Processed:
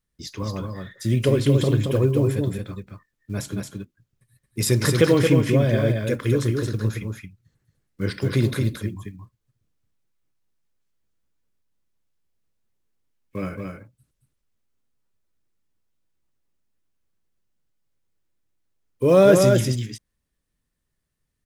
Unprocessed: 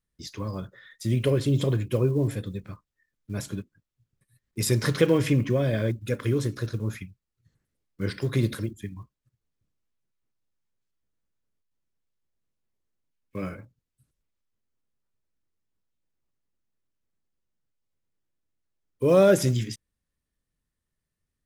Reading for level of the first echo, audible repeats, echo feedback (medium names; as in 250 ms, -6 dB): -4.5 dB, 1, no regular repeats